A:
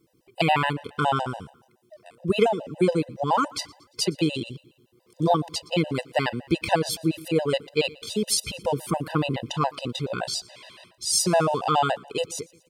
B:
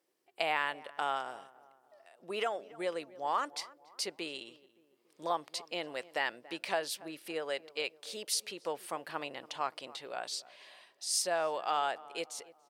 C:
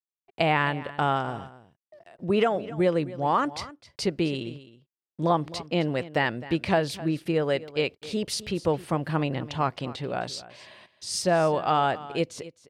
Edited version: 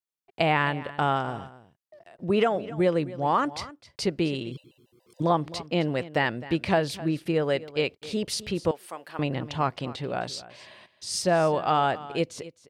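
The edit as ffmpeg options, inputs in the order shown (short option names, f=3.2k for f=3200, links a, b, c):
-filter_complex "[2:a]asplit=3[a][b][c];[a]atrim=end=4.522[d];[0:a]atrim=start=4.518:end=5.222[e];[b]atrim=start=5.218:end=8.712[f];[1:a]atrim=start=8.708:end=9.192[g];[c]atrim=start=9.188[h];[d][e]acrossfade=d=0.004:c1=hsin:c2=hsin[i];[i][f]acrossfade=d=0.004:c1=hsin:c2=hsin[j];[j][g]acrossfade=d=0.004:c1=hsin:c2=hsin[k];[k][h]acrossfade=d=0.004:c1=hsin:c2=hsin"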